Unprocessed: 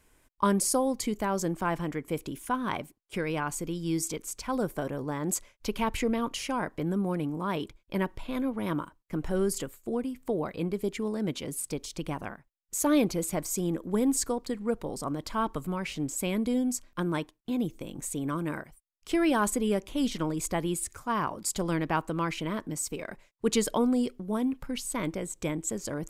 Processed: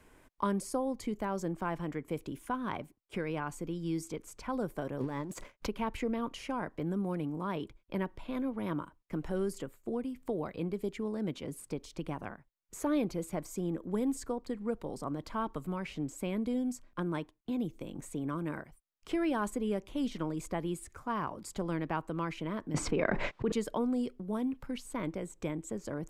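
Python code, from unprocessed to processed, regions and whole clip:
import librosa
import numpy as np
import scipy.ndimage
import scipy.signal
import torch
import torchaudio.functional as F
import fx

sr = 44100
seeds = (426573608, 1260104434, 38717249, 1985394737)

y = fx.chain(x, sr, fx.leveller(passes=2),
    fx.over_compress(threshold_db=-30.0, ratio=-0.5), at=(5.0, 5.67))
y = fx.chain(y, sr, fx.lowpass(hz=3600.0, slope=12),
    fx.env_flatten(amount_pct=100), at=(22.74, 23.52))
y = fx.high_shelf(y, sr, hz=3200.0, db=-10.0)
y = fx.band_squash(y, sr, depth_pct=40)
y = F.gain(torch.from_numpy(y), -5.0).numpy()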